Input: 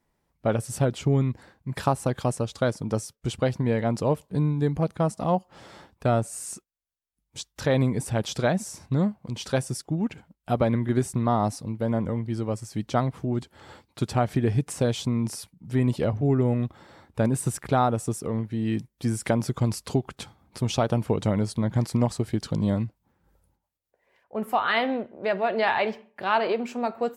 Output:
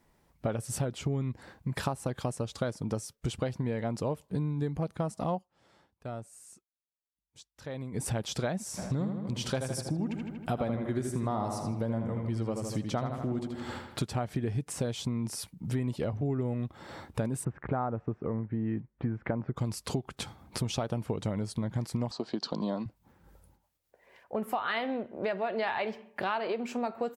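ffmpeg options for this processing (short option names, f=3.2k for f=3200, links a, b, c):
-filter_complex "[0:a]asplit=3[a][b][c];[a]afade=t=out:st=8.77:d=0.02[d];[b]asplit=2[e][f];[f]adelay=79,lowpass=f=4.4k:p=1,volume=-6dB,asplit=2[g][h];[h]adelay=79,lowpass=f=4.4k:p=1,volume=0.54,asplit=2[i][j];[j]adelay=79,lowpass=f=4.4k:p=1,volume=0.54,asplit=2[k][l];[l]adelay=79,lowpass=f=4.4k:p=1,volume=0.54,asplit=2[m][n];[n]adelay=79,lowpass=f=4.4k:p=1,volume=0.54,asplit=2[o][p];[p]adelay=79,lowpass=f=4.4k:p=1,volume=0.54,asplit=2[q][r];[r]adelay=79,lowpass=f=4.4k:p=1,volume=0.54[s];[e][g][i][k][m][o][q][s]amix=inputs=8:normalize=0,afade=t=in:st=8.77:d=0.02,afade=t=out:st=14.04:d=0.02[t];[c]afade=t=in:st=14.04:d=0.02[u];[d][t][u]amix=inputs=3:normalize=0,asplit=3[v][w][x];[v]afade=t=out:st=17.43:d=0.02[y];[w]lowpass=f=1.9k:w=0.5412,lowpass=f=1.9k:w=1.3066,afade=t=in:st=17.43:d=0.02,afade=t=out:st=19.56:d=0.02[z];[x]afade=t=in:st=19.56:d=0.02[aa];[y][z][aa]amix=inputs=3:normalize=0,asettb=1/sr,asplit=3[ab][ac][ad];[ab]atrim=end=22.114[ae];[ac]atrim=start=22.11:end=22.86,asetpts=PTS-STARTPTS,afade=t=in:d=0.004:c=qsin,afade=t=out:st=0.746:d=0.004:c=qsin,highpass=f=200:w=0.5412,highpass=f=200:w=1.3066,equalizer=f=680:t=q:w=4:g=6,equalizer=f=1k:t=q:w=4:g=8,equalizer=f=2.1k:t=q:w=4:g=-7,equalizer=f=4.4k:t=q:w=4:g=10,lowpass=f=6k:w=0.5412,lowpass=f=6k:w=1.3066[af];[ad]atrim=start=22.856[ag];[ae][af]acrossfade=d=0.004:c1=hsin:c2=qsin[ah];[ah][ag]acrossfade=d=0.004:c1=qsin:c2=hsin,asplit=3[ai][aj][ak];[ai]atrim=end=5.49,asetpts=PTS-STARTPTS,afade=t=out:st=5.34:d=0.15:silence=0.0707946[al];[aj]atrim=start=5.49:end=7.92,asetpts=PTS-STARTPTS,volume=-23dB[am];[ak]atrim=start=7.92,asetpts=PTS-STARTPTS,afade=t=in:d=0.15:silence=0.0707946[an];[al][am][an]concat=n=3:v=0:a=1,acompressor=threshold=-38dB:ratio=4,volume=6.5dB"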